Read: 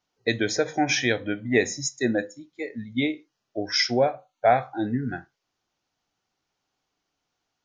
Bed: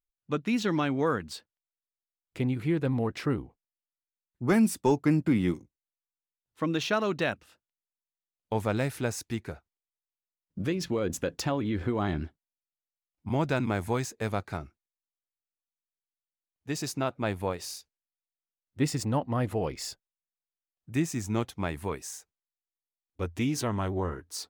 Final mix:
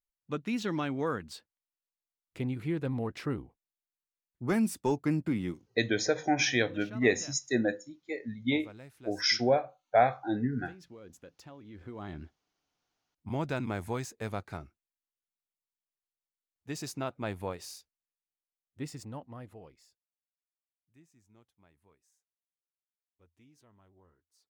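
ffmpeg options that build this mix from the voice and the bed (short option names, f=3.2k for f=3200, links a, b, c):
-filter_complex "[0:a]adelay=5500,volume=-4dB[a];[1:a]volume=10.5dB,afade=t=out:st=5.22:d=0.72:silence=0.158489,afade=t=in:st=11.65:d=1.22:silence=0.16788,afade=t=out:st=17.48:d=2.47:silence=0.0398107[b];[a][b]amix=inputs=2:normalize=0"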